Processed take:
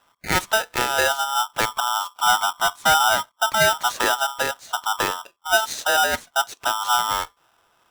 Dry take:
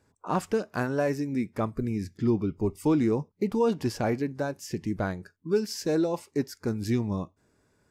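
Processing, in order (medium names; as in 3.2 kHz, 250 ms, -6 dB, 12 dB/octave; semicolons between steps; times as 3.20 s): level-controlled noise filter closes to 1.9 kHz, open at -24 dBFS; polarity switched at an audio rate 1.1 kHz; trim +6 dB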